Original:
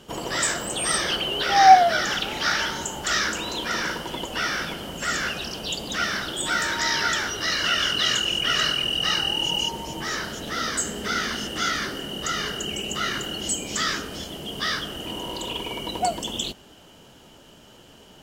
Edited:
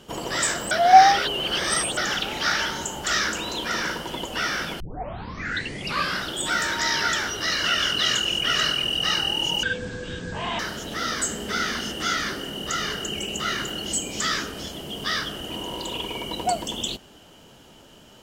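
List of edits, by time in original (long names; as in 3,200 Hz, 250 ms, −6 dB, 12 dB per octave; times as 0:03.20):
0:00.71–0:01.97: reverse
0:04.80: tape start 1.44 s
0:09.63–0:10.15: play speed 54%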